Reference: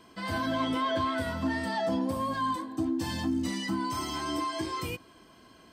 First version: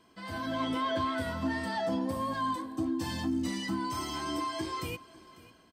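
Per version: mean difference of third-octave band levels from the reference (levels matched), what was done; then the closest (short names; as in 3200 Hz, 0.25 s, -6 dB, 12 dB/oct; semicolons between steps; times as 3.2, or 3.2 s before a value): 1.5 dB: AGC gain up to 5.5 dB; echo 0.547 s -20 dB; gain -7.5 dB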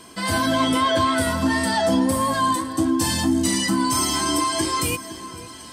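4.0 dB: bell 9600 Hz +14.5 dB 1.3 oct; on a send: echo with dull and thin repeats by turns 0.507 s, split 1900 Hz, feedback 64%, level -13 dB; on the sum: gain +9 dB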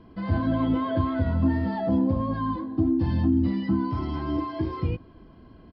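9.5 dB: downsampling 11025 Hz; tilt -4.5 dB/oct; gain -1.5 dB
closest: first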